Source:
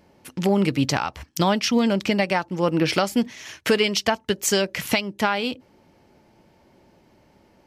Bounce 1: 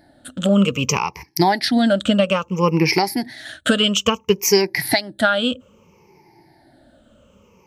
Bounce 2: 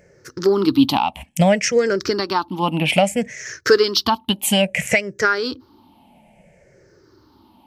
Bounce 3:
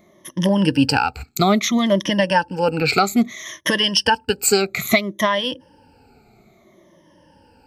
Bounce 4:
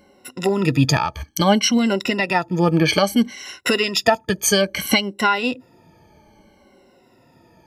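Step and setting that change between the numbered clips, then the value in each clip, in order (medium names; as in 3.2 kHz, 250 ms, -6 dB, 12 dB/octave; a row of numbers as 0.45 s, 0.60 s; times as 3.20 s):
drifting ripple filter, ripples per octave: 0.79, 0.53, 1.2, 2.1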